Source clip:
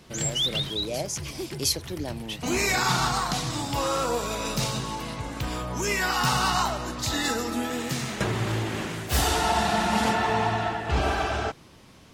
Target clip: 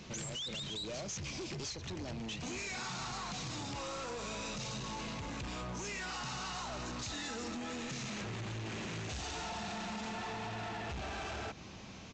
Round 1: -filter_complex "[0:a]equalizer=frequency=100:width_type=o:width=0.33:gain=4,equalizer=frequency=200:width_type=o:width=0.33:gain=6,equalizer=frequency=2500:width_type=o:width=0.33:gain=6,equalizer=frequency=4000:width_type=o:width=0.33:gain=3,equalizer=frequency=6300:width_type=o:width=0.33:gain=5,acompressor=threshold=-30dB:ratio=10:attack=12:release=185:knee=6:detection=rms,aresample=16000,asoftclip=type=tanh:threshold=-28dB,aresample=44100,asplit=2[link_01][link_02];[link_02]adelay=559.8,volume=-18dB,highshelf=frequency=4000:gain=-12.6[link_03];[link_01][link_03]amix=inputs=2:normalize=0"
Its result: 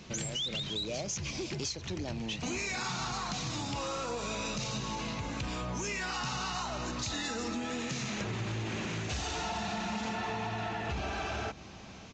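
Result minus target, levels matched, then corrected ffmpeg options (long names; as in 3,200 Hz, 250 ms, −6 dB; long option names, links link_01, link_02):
soft clipping: distortion −10 dB
-filter_complex "[0:a]equalizer=frequency=100:width_type=o:width=0.33:gain=4,equalizer=frequency=200:width_type=o:width=0.33:gain=6,equalizer=frequency=2500:width_type=o:width=0.33:gain=6,equalizer=frequency=4000:width_type=o:width=0.33:gain=3,equalizer=frequency=6300:width_type=o:width=0.33:gain=5,acompressor=threshold=-30dB:ratio=10:attack=12:release=185:knee=6:detection=rms,aresample=16000,asoftclip=type=tanh:threshold=-38.5dB,aresample=44100,asplit=2[link_01][link_02];[link_02]adelay=559.8,volume=-18dB,highshelf=frequency=4000:gain=-12.6[link_03];[link_01][link_03]amix=inputs=2:normalize=0"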